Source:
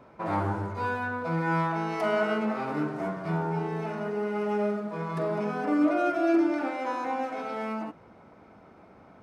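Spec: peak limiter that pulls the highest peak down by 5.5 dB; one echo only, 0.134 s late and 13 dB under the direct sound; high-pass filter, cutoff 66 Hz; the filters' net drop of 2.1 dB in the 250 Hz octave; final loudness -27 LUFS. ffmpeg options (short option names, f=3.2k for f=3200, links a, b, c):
-af "highpass=66,equalizer=f=250:t=o:g=-3,alimiter=limit=-21dB:level=0:latency=1,aecho=1:1:134:0.224,volume=4dB"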